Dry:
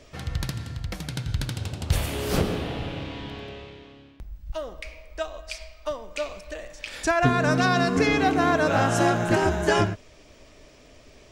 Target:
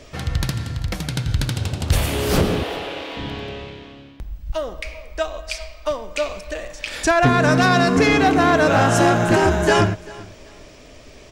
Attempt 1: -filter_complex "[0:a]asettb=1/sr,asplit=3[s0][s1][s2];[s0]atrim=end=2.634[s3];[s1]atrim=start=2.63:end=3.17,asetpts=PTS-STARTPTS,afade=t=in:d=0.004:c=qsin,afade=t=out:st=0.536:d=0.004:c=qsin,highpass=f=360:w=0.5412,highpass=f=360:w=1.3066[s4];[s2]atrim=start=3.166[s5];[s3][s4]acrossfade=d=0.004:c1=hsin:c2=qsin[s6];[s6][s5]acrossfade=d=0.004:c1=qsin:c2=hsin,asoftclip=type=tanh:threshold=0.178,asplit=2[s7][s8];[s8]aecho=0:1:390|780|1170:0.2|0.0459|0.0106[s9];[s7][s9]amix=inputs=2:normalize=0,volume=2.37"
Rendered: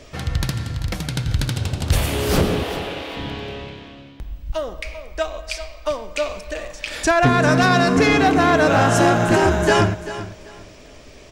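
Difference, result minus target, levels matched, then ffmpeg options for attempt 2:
echo-to-direct +7.5 dB
-filter_complex "[0:a]asettb=1/sr,asplit=3[s0][s1][s2];[s0]atrim=end=2.634[s3];[s1]atrim=start=2.63:end=3.17,asetpts=PTS-STARTPTS,afade=t=in:d=0.004:c=qsin,afade=t=out:st=0.536:d=0.004:c=qsin,highpass=f=360:w=0.5412,highpass=f=360:w=1.3066[s4];[s2]atrim=start=3.166[s5];[s3][s4]acrossfade=d=0.004:c1=hsin:c2=qsin[s6];[s6][s5]acrossfade=d=0.004:c1=qsin:c2=hsin,asoftclip=type=tanh:threshold=0.178,asplit=2[s7][s8];[s8]aecho=0:1:390|780:0.0841|0.0194[s9];[s7][s9]amix=inputs=2:normalize=0,volume=2.37"

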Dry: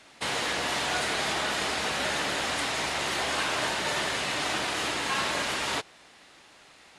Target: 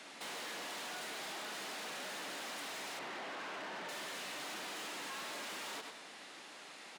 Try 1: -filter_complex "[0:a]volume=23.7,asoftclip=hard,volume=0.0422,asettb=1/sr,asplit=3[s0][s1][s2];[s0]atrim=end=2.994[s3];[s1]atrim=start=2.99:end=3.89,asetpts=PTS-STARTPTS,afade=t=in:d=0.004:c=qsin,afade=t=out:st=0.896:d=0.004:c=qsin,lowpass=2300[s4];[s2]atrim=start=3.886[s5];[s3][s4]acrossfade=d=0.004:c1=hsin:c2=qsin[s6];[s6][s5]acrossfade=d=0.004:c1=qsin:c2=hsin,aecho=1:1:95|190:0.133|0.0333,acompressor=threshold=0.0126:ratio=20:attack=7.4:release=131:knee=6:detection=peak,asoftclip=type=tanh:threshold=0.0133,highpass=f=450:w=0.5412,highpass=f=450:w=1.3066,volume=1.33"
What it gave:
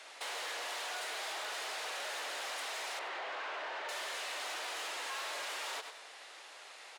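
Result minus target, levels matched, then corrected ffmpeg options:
250 Hz band -13.5 dB; saturation: distortion -8 dB
-filter_complex "[0:a]volume=23.7,asoftclip=hard,volume=0.0422,asettb=1/sr,asplit=3[s0][s1][s2];[s0]atrim=end=2.994[s3];[s1]atrim=start=2.99:end=3.89,asetpts=PTS-STARTPTS,afade=t=in:d=0.004:c=qsin,afade=t=out:st=0.896:d=0.004:c=qsin,lowpass=2300[s4];[s2]atrim=start=3.886[s5];[s3][s4]acrossfade=d=0.004:c1=hsin:c2=qsin[s6];[s6][s5]acrossfade=d=0.004:c1=qsin:c2=hsin,aecho=1:1:95|190:0.133|0.0333,acompressor=threshold=0.0126:ratio=20:attack=7.4:release=131:knee=6:detection=peak,asoftclip=type=tanh:threshold=0.00596,highpass=f=180:w=0.5412,highpass=f=180:w=1.3066,volume=1.33"

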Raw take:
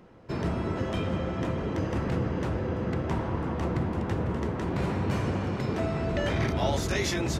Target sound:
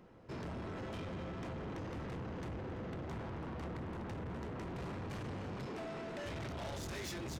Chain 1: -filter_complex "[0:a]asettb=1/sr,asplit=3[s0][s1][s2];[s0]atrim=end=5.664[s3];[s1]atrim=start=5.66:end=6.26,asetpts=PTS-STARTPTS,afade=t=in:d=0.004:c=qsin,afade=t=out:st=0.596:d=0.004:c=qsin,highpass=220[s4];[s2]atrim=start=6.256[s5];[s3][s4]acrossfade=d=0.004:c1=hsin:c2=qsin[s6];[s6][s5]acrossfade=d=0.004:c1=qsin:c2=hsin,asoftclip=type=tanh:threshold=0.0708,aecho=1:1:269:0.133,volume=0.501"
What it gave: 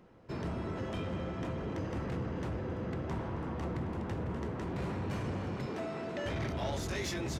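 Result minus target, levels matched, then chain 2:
saturation: distortion -10 dB
-filter_complex "[0:a]asettb=1/sr,asplit=3[s0][s1][s2];[s0]atrim=end=5.664[s3];[s1]atrim=start=5.66:end=6.26,asetpts=PTS-STARTPTS,afade=t=in:d=0.004:c=qsin,afade=t=out:st=0.596:d=0.004:c=qsin,highpass=220[s4];[s2]atrim=start=6.256[s5];[s3][s4]acrossfade=d=0.004:c1=hsin:c2=qsin[s6];[s6][s5]acrossfade=d=0.004:c1=qsin:c2=hsin,asoftclip=type=tanh:threshold=0.0188,aecho=1:1:269:0.133,volume=0.501"

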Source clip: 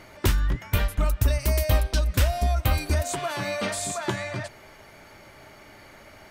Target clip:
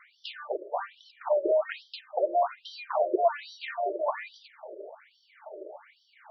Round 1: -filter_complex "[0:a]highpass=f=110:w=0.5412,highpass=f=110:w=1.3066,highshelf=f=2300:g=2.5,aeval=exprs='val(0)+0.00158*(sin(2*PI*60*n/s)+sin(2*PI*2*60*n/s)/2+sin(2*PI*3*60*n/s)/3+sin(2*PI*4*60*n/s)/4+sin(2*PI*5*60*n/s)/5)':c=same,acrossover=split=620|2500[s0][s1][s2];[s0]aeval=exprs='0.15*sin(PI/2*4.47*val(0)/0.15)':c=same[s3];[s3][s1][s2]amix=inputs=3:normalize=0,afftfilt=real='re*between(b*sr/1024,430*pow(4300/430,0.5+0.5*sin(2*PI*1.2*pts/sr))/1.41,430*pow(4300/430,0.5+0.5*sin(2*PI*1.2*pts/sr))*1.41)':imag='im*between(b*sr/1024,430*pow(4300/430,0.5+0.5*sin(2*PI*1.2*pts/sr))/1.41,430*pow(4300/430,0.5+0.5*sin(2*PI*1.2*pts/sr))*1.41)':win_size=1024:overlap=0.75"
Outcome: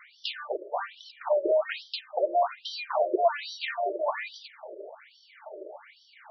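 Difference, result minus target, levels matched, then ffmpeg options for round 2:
4 kHz band +6.5 dB
-filter_complex "[0:a]highpass=f=110:w=0.5412,highpass=f=110:w=1.3066,highshelf=f=2300:g=-7.5,aeval=exprs='val(0)+0.00158*(sin(2*PI*60*n/s)+sin(2*PI*2*60*n/s)/2+sin(2*PI*3*60*n/s)/3+sin(2*PI*4*60*n/s)/4+sin(2*PI*5*60*n/s)/5)':c=same,acrossover=split=620|2500[s0][s1][s2];[s0]aeval=exprs='0.15*sin(PI/2*4.47*val(0)/0.15)':c=same[s3];[s3][s1][s2]amix=inputs=3:normalize=0,afftfilt=real='re*between(b*sr/1024,430*pow(4300/430,0.5+0.5*sin(2*PI*1.2*pts/sr))/1.41,430*pow(4300/430,0.5+0.5*sin(2*PI*1.2*pts/sr))*1.41)':imag='im*between(b*sr/1024,430*pow(4300/430,0.5+0.5*sin(2*PI*1.2*pts/sr))/1.41,430*pow(4300/430,0.5+0.5*sin(2*PI*1.2*pts/sr))*1.41)':win_size=1024:overlap=0.75"

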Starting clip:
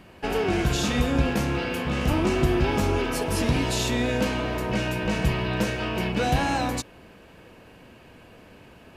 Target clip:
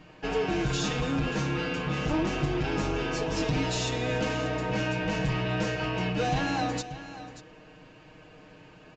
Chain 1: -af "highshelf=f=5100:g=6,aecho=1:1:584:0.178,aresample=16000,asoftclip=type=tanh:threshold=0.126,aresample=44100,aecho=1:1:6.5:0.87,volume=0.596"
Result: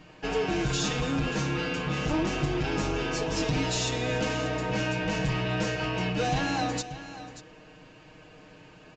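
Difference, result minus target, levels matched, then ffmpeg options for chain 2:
8 kHz band +3.0 dB
-af "aecho=1:1:584:0.178,aresample=16000,asoftclip=type=tanh:threshold=0.126,aresample=44100,aecho=1:1:6.5:0.87,volume=0.596"

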